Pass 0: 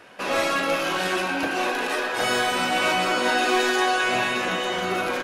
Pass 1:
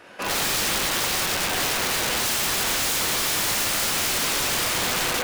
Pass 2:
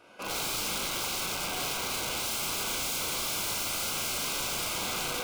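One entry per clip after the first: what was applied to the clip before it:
Schroeder reverb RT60 1 s, combs from 30 ms, DRR -0.5 dB; wrapped overs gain 19 dB
Butterworth band-stop 1800 Hz, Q 4.2; on a send: flutter echo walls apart 6.3 m, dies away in 0.29 s; on the sum: gain -9 dB

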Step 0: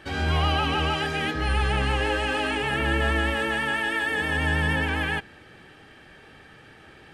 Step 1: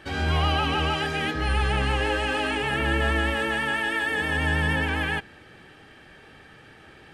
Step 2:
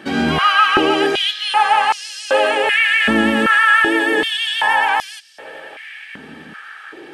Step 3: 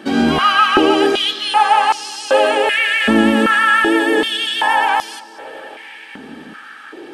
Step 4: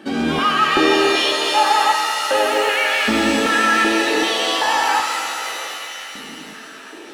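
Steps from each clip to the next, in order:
nothing audible
multi-head echo 0.279 s, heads second and third, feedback 61%, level -24 dB; stepped high-pass 2.6 Hz 220–5300 Hz; gain +7.5 dB
graphic EQ 125/250/2000 Hz -9/+4/-5 dB; analogue delay 0.236 s, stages 4096, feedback 72%, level -23.5 dB; gain +2.5 dB
in parallel at -11 dB: overloaded stage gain 11.5 dB; on the sum: shimmer reverb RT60 2.6 s, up +7 st, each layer -2 dB, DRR 4 dB; gain -7 dB

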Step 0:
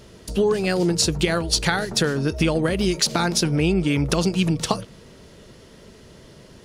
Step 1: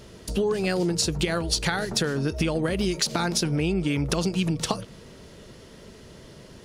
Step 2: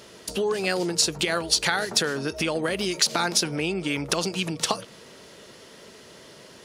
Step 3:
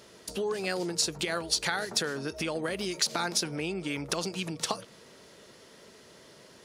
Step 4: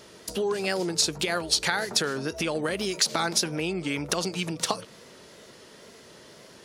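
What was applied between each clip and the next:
compressor 2.5:1, threshold -23 dBFS, peak gain reduction 6 dB
HPF 570 Hz 6 dB/oct; gain +4 dB
bell 2900 Hz -2.5 dB 0.38 oct; gain -6 dB
wow and flutter 67 cents; gain +4 dB

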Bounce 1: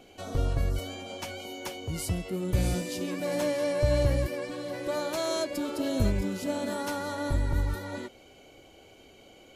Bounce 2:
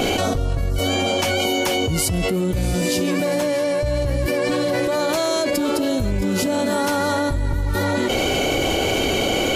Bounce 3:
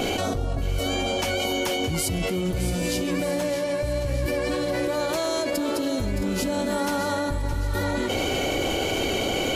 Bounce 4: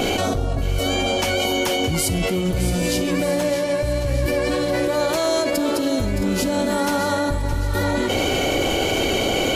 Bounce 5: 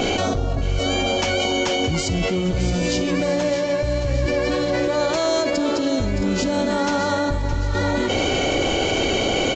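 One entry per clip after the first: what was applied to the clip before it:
fast leveller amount 100%
split-band echo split 1200 Hz, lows 0.281 s, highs 0.617 s, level -11 dB; gain -5.5 dB
reverb RT60 0.50 s, pre-delay 5 ms, DRR 16 dB; gain +4.5 dB
downsampling 16000 Hz

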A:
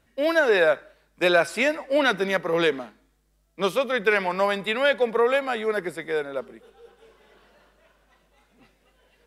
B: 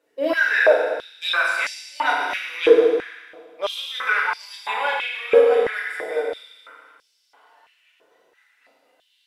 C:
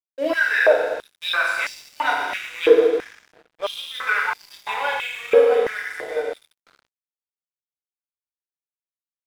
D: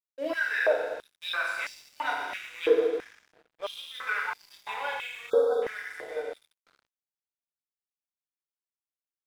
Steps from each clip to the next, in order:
FDN reverb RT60 1.7 s, low-frequency decay 1.4×, high-frequency decay 0.95×, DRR -5.5 dB; stepped high-pass 3 Hz 430–5000 Hz; gain -8 dB
crossover distortion -41 dBFS
spectral delete 5.3–5.62, 1600–3300 Hz; gain -9 dB

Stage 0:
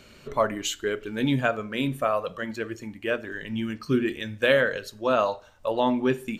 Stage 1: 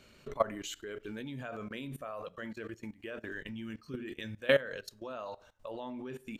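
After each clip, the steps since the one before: level quantiser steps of 19 dB; gain -3 dB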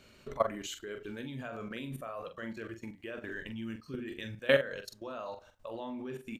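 doubler 44 ms -8 dB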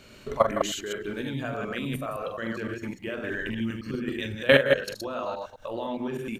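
reverse delay 0.103 s, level -2.5 dB; gain +7.5 dB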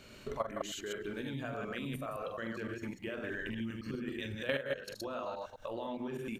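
compressor 2.5:1, threshold -34 dBFS, peak gain reduction 14 dB; gain -3.5 dB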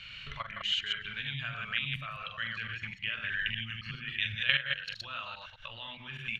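EQ curve 150 Hz 0 dB, 320 Hz -27 dB, 820 Hz -11 dB, 1400 Hz +3 dB, 3000 Hz +14 dB, 9700 Hz -20 dB; gain +2.5 dB

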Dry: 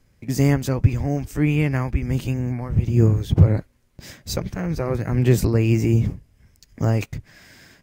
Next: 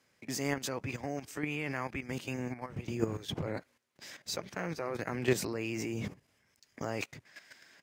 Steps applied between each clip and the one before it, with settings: weighting filter A; level quantiser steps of 12 dB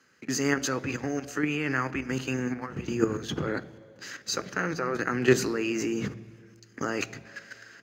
reverb RT60 2.2 s, pre-delay 3 ms, DRR 16.5 dB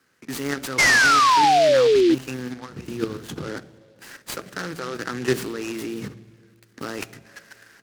painted sound fall, 0.78–2.15, 310–2200 Hz -14 dBFS; noise-modulated delay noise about 3200 Hz, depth 0.046 ms; gain -1.5 dB

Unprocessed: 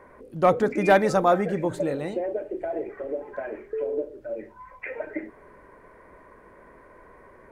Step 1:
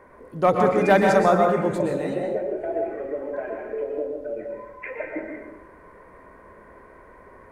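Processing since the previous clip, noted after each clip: plate-style reverb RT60 0.95 s, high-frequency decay 0.55×, pre-delay 0.105 s, DRR 1 dB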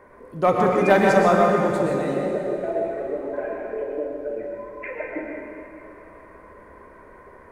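plate-style reverb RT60 3.3 s, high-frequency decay 0.95×, DRR 4 dB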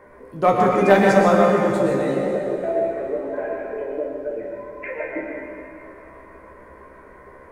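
resonator 66 Hz, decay 0.16 s, harmonics all, mix 90%; gain +6.5 dB

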